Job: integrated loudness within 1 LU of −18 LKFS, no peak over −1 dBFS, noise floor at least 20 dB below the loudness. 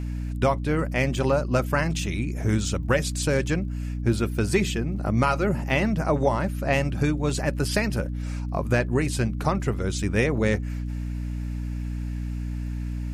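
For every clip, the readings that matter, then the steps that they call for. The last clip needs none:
crackle rate 37 per second; mains hum 60 Hz; hum harmonics up to 300 Hz; level of the hum −27 dBFS; integrated loudness −25.5 LKFS; sample peak −9.0 dBFS; target loudness −18.0 LKFS
→ click removal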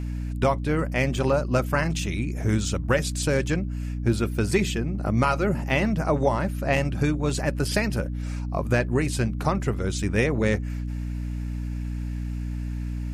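crackle rate 0.076 per second; mains hum 60 Hz; hum harmonics up to 300 Hz; level of the hum −27 dBFS
→ mains-hum notches 60/120/180/240/300 Hz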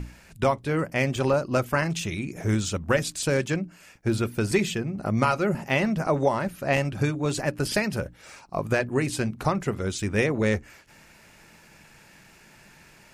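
mains hum none found; integrated loudness −26.0 LKFS; sample peak −9.5 dBFS; target loudness −18.0 LKFS
→ level +8 dB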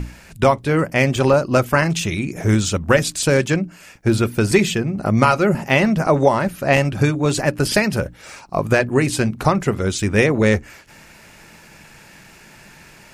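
integrated loudness −18.0 LKFS; sample peak −1.5 dBFS; background noise floor −46 dBFS

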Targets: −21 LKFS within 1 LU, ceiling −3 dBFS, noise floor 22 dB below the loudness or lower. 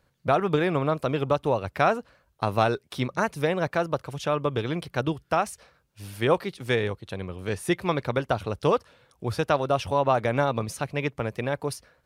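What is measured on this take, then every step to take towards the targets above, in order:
integrated loudness −27.0 LKFS; sample peak −7.0 dBFS; target loudness −21.0 LKFS
→ level +6 dB
brickwall limiter −3 dBFS

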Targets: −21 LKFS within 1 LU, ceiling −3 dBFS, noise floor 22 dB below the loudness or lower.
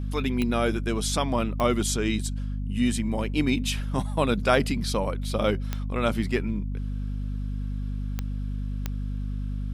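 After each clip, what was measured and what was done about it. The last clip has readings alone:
number of clicks 5; mains hum 50 Hz; hum harmonics up to 250 Hz; level of the hum −27 dBFS; integrated loudness −27.5 LKFS; sample peak −6.5 dBFS; target loudness −21.0 LKFS
→ click removal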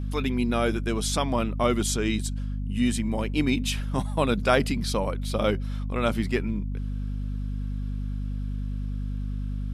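number of clicks 0; mains hum 50 Hz; hum harmonics up to 250 Hz; level of the hum −27 dBFS
→ hum removal 50 Hz, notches 5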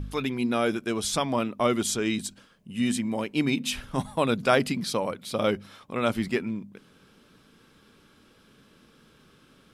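mains hum none found; integrated loudness −27.5 LKFS; sample peak −7.0 dBFS; target loudness −21.0 LKFS
→ level +6.5 dB
brickwall limiter −3 dBFS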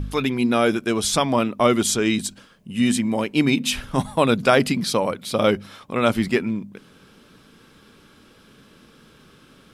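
integrated loudness −21.0 LKFS; sample peak −3.0 dBFS; background noise floor −52 dBFS

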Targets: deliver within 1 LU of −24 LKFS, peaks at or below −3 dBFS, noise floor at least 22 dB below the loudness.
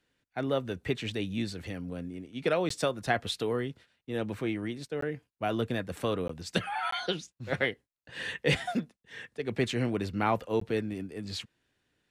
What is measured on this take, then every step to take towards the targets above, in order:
number of dropouts 5; longest dropout 14 ms; integrated loudness −32.5 LKFS; sample peak −12.5 dBFS; target loudness −24.0 LKFS
→ repair the gap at 0:02.69/0:05.01/0:06.28/0:06.91/0:10.60, 14 ms
level +8.5 dB

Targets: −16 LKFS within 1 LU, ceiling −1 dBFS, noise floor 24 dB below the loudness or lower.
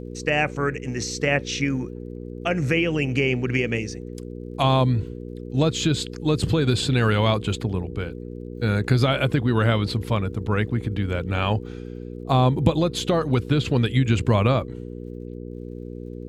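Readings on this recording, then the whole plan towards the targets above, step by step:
crackle rate 46 per second; mains hum 60 Hz; hum harmonics up to 480 Hz; level of the hum −33 dBFS; integrated loudness −23.0 LKFS; sample peak −4.0 dBFS; target loudness −16.0 LKFS
→ click removal
hum removal 60 Hz, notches 8
level +7 dB
brickwall limiter −1 dBFS

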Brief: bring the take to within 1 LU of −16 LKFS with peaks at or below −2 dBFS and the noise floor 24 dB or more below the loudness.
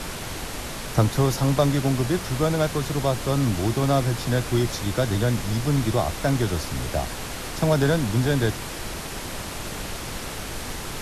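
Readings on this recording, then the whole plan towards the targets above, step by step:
background noise floor −33 dBFS; target noise floor −49 dBFS; integrated loudness −24.5 LKFS; sample peak −7.0 dBFS; target loudness −16.0 LKFS
→ noise reduction from a noise print 16 dB
level +8.5 dB
brickwall limiter −2 dBFS

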